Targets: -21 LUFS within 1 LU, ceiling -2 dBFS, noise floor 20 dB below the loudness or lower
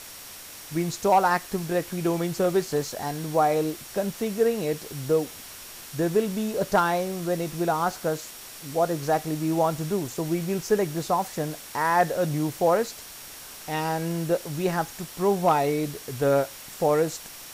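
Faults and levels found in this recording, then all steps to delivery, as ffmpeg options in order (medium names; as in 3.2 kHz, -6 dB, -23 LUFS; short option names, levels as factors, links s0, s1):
steady tone 5.6 kHz; tone level -52 dBFS; noise floor -42 dBFS; noise floor target -46 dBFS; loudness -26.0 LUFS; peak level -10.5 dBFS; loudness target -21.0 LUFS
-> -af "bandreject=f=5600:w=30"
-af "afftdn=nr=6:nf=-42"
-af "volume=1.78"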